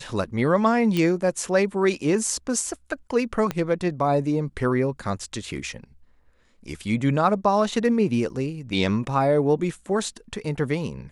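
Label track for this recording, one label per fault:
0.970000	0.970000	pop -12 dBFS
3.510000	3.510000	pop -12 dBFS
8.300000	8.300000	dropout 2.1 ms

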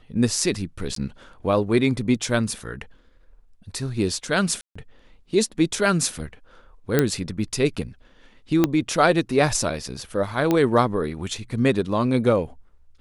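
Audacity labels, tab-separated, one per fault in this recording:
0.950000	0.960000	dropout 13 ms
4.610000	4.750000	dropout 145 ms
6.990000	6.990000	pop -4 dBFS
8.640000	8.640000	pop -5 dBFS
10.510000	10.510000	pop -8 dBFS

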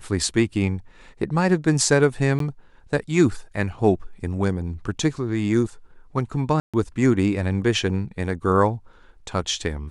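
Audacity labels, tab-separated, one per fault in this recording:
2.390000	2.400000	dropout 13 ms
6.600000	6.740000	dropout 136 ms

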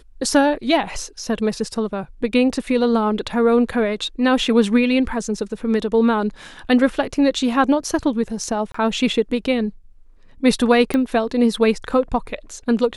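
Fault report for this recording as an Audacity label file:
8.720000	8.740000	dropout 24 ms
10.940000	10.940000	pop -9 dBFS

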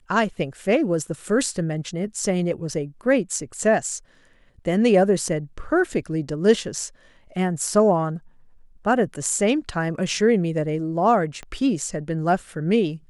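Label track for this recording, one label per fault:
11.430000	11.430000	pop -22 dBFS

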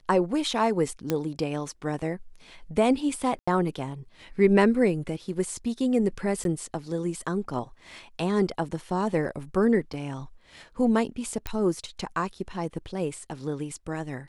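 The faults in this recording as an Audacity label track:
1.100000	1.100000	pop -11 dBFS
3.390000	3.480000	dropout 85 ms
6.440000	6.450000	dropout 12 ms
9.930000	9.940000	dropout 6 ms
11.470000	11.470000	pop -15 dBFS

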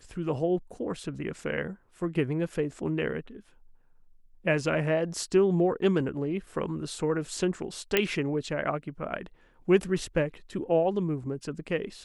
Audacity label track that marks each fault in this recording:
7.970000	7.970000	pop -8 dBFS

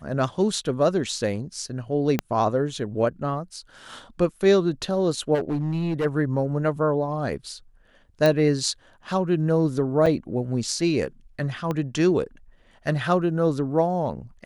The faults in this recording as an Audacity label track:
2.190000	2.190000	pop -9 dBFS
5.340000	6.060000	clipped -21 dBFS
8.260000	8.260000	pop -9 dBFS
10.060000	10.070000	dropout 5.3 ms
11.710000	11.710000	pop -15 dBFS

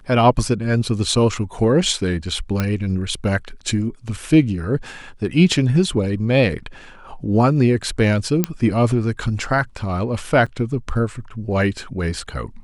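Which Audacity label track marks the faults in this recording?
2.600000	2.600000	pop -7 dBFS
8.440000	8.440000	pop -3 dBFS
10.460000	10.470000	dropout 5.6 ms

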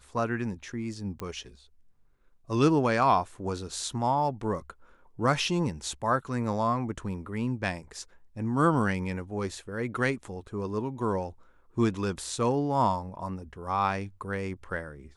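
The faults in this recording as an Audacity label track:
1.200000	1.200000	pop -22 dBFS

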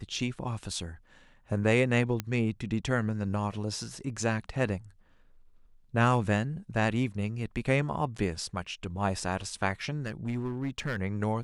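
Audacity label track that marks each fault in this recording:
2.200000	2.200000	pop -16 dBFS
10.060000	10.990000	clipped -27 dBFS

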